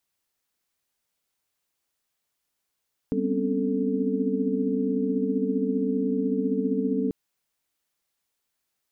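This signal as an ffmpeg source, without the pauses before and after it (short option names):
-f lavfi -i "aevalsrc='0.0355*(sin(2*PI*196*t)+sin(2*PI*246.94*t)+sin(2*PI*261.63*t)+sin(2*PI*277.18*t)+sin(2*PI*440*t))':d=3.99:s=44100"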